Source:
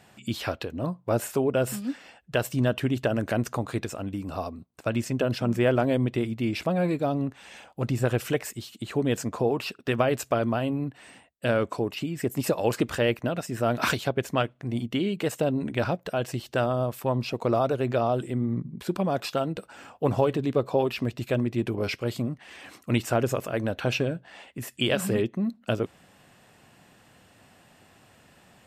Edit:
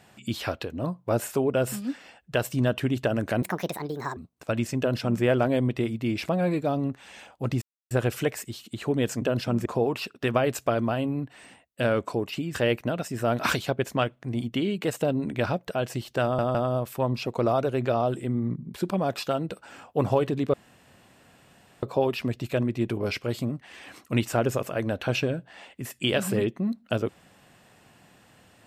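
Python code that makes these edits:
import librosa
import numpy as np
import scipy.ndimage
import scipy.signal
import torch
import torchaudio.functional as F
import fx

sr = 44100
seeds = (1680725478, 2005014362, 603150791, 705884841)

y = fx.edit(x, sr, fx.speed_span(start_s=3.42, length_s=1.12, speed=1.5),
    fx.duplicate(start_s=5.16, length_s=0.44, to_s=9.3),
    fx.insert_silence(at_s=7.99, length_s=0.29),
    fx.cut(start_s=12.19, length_s=0.74),
    fx.stutter(start_s=16.61, slice_s=0.16, count=3),
    fx.insert_room_tone(at_s=20.6, length_s=1.29), tone=tone)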